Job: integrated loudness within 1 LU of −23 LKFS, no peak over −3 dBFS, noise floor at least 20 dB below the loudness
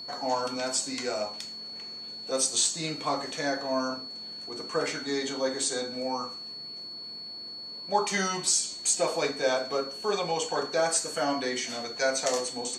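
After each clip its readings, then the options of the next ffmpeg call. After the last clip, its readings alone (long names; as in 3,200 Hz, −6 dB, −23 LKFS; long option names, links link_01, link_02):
interfering tone 4,400 Hz; level of the tone −38 dBFS; integrated loudness −29.5 LKFS; sample peak −12.0 dBFS; target loudness −23.0 LKFS
→ -af "bandreject=frequency=4400:width=30"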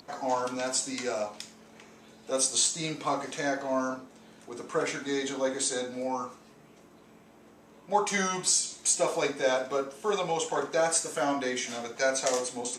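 interfering tone none found; integrated loudness −29.0 LKFS; sample peak −12.5 dBFS; target loudness −23.0 LKFS
→ -af "volume=6dB"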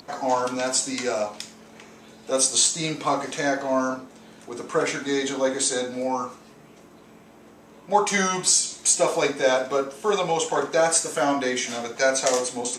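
integrated loudness −23.0 LKFS; sample peak −6.5 dBFS; background noise floor −50 dBFS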